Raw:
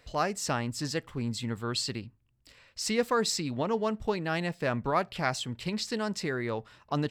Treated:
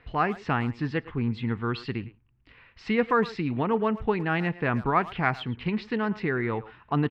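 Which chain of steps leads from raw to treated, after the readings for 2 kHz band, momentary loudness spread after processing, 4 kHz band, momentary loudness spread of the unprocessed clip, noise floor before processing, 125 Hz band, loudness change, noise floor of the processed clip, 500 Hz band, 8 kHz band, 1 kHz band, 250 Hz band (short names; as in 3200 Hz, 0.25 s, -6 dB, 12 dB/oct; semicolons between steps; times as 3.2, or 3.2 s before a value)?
+5.0 dB, 7 LU, -7.0 dB, 7 LU, -68 dBFS, +5.5 dB, +3.5 dB, -62 dBFS, +2.5 dB, under -25 dB, +4.5 dB, +5.5 dB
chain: LPF 2700 Hz 24 dB/oct; bell 580 Hz -12 dB 0.3 oct; speakerphone echo 0.11 s, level -16 dB; gain +5.5 dB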